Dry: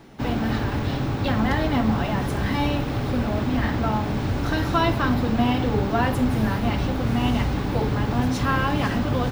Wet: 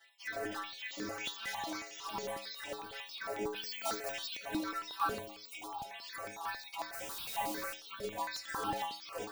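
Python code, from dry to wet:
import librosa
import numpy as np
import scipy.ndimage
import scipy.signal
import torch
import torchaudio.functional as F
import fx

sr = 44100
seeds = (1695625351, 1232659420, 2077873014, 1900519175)

p1 = fx.spec_dropout(x, sr, seeds[0], share_pct=36)
p2 = fx.filter_lfo_highpass(p1, sr, shape='sine', hz=1.7, low_hz=360.0, high_hz=4400.0, q=3.0)
p3 = (np.mod(10.0 ** (23.5 / 20.0) * p2 + 1.0, 2.0) - 1.0) / 10.0 ** (23.5 / 20.0)
p4 = p2 + (p3 * 10.0 ** (-8.0 / 20.0))
p5 = fx.fixed_phaser(p4, sr, hz=330.0, stages=8, at=(5.2, 5.91))
p6 = p5 + fx.echo_single(p5, sr, ms=75, db=-16.5, dry=0)
p7 = fx.spec_paint(p6, sr, seeds[1], shape='noise', start_s=0.91, length_s=1.35, low_hz=320.0, high_hz=7200.0, level_db=-38.0)
p8 = fx.stiff_resonator(p7, sr, f0_hz=100.0, decay_s=0.53, stiffness=0.008)
p9 = fx.high_shelf(p8, sr, hz=3400.0, db=10.5, at=(3.56, 4.37))
p10 = fx.dmg_noise_colour(p9, sr, seeds[2], colour='white', level_db=-46.0, at=(6.92, 7.73), fade=0.02)
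p11 = fx.phaser_held(p10, sr, hz=11.0, low_hz=290.0, high_hz=4200.0)
y = p11 * 10.0 ** (2.0 / 20.0)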